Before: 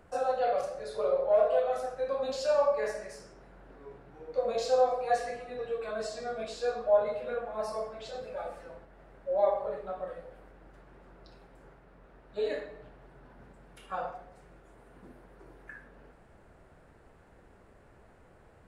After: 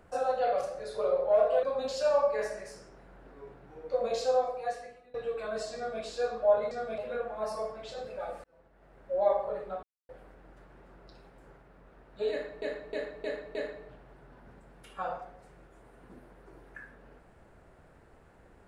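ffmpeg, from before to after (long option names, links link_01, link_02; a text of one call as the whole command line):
ffmpeg -i in.wav -filter_complex "[0:a]asplit=12[link_01][link_02][link_03][link_04][link_05][link_06][link_07][link_08][link_09][link_10][link_11][link_12];[link_01]atrim=end=1.632[link_13];[link_02]atrim=start=2.068:end=5.58,asetpts=PTS-STARTPTS,afade=type=out:start_time=2.492:duration=1.02:silence=0.0841395[link_14];[link_03]atrim=start=5.58:end=7.152,asetpts=PTS-STARTPTS,afade=type=in:duration=0.004:curve=hsin:silence=0.0841395[link_15];[link_04]atrim=start=6.198:end=6.472[link_16];[link_05]atrim=start=7.148:end=8.61,asetpts=PTS-STARTPTS,afade=type=out:start_time=1.458:duration=0.004:curve=hsin[link_17];[link_06]atrim=start=8.61:end=10,asetpts=PTS-STARTPTS,afade=type=in:duration=0.67,afade=type=out:start_time=1.386:duration=0.004:curve=hsin[link_18];[link_07]atrim=start=10:end=10.26,asetpts=PTS-STARTPTS,volume=0[link_19];[link_08]atrim=start=10.26:end=12.792,asetpts=PTS-STARTPTS,afade=type=in:duration=0.004:curve=hsin[link_20];[link_09]atrim=start=12.478:end=12.792[link_21];[link_10]atrim=start=12.478:end=12.792[link_22];[link_11]atrim=start=12.478:end=12.792[link_23];[link_12]atrim=start=12.478[link_24];[link_14][link_15]concat=n=2:v=0:a=1[link_25];[link_13][link_25]acrossfade=duration=0.004:curve1=hsin:curve2=hsin[link_26];[link_26][link_16]acrossfade=duration=0.004:curve1=hsin:curve2=hsin[link_27];[link_17][link_18][link_19][link_20]concat=n=4:v=0:a=1[link_28];[link_27][link_28]acrossfade=duration=0.004:curve1=hsin:curve2=hsin[link_29];[link_29][link_21]acrossfade=duration=0.004:curve1=hsin:curve2=hsin[link_30];[link_30][link_22]acrossfade=duration=0.004:curve1=hsin:curve2=hsin[link_31];[link_31][link_23]acrossfade=duration=0.004:curve1=hsin:curve2=hsin[link_32];[link_32][link_24]acrossfade=duration=0.004:curve1=hsin:curve2=hsin" out.wav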